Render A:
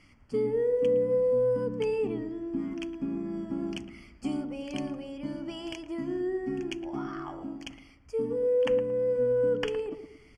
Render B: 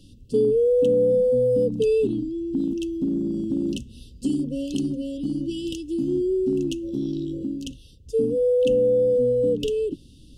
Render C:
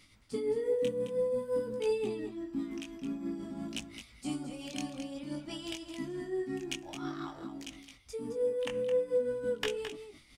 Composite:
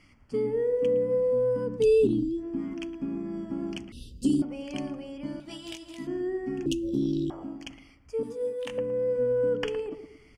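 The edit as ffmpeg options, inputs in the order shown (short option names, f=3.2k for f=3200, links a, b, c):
-filter_complex "[1:a]asplit=3[a][b][c];[2:a]asplit=2[d][e];[0:a]asplit=6[f][g][h][i][j][k];[f]atrim=end=1.85[l];[a]atrim=start=1.75:end=2.45[m];[g]atrim=start=2.35:end=3.922[n];[b]atrim=start=3.918:end=4.422[o];[h]atrim=start=4.418:end=5.402[p];[d]atrim=start=5.398:end=6.072[q];[i]atrim=start=6.068:end=6.662[r];[c]atrim=start=6.658:end=7.302[s];[j]atrim=start=7.298:end=8.232[t];[e]atrim=start=8.228:end=8.782[u];[k]atrim=start=8.778[v];[l][m]acrossfade=d=0.1:c1=tri:c2=tri[w];[w][n]acrossfade=d=0.1:c1=tri:c2=tri[x];[x][o]acrossfade=d=0.004:c1=hsin:c2=hsin[y];[y][p]acrossfade=d=0.004:c1=hsin:c2=hsin[z];[z][q]acrossfade=d=0.004:c1=hsin:c2=hsin[aa];[aa][r]acrossfade=d=0.004:c1=hsin:c2=hsin[ab];[ab][s]acrossfade=d=0.004:c1=hsin:c2=hsin[ac];[ac][t]acrossfade=d=0.004:c1=hsin:c2=hsin[ad];[ad][u]acrossfade=d=0.004:c1=hsin:c2=hsin[ae];[ae][v]acrossfade=d=0.004:c1=hsin:c2=hsin"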